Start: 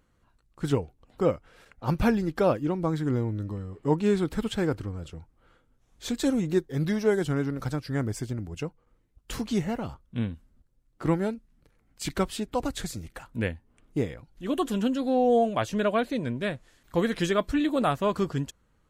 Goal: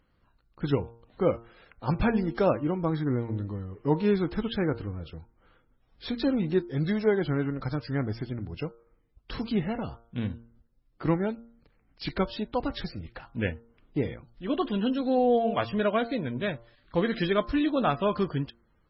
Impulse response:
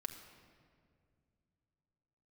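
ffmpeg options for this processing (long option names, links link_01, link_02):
-af "bandreject=frequency=116.1:width_type=h:width=4,bandreject=frequency=232.2:width_type=h:width=4,bandreject=frequency=348.3:width_type=h:width=4,bandreject=frequency=464.4:width_type=h:width=4,bandreject=frequency=580.5:width_type=h:width=4,bandreject=frequency=696.6:width_type=h:width=4,bandreject=frequency=812.7:width_type=h:width=4,bandreject=frequency=928.8:width_type=h:width=4,bandreject=frequency=1044.9:width_type=h:width=4,bandreject=frequency=1161:width_type=h:width=4,bandreject=frequency=1277.1:width_type=h:width=4,bandreject=frequency=1393.2:width_type=h:width=4,bandreject=frequency=1509.3:width_type=h:width=4" -ar 22050 -c:a libmp3lame -b:a 16k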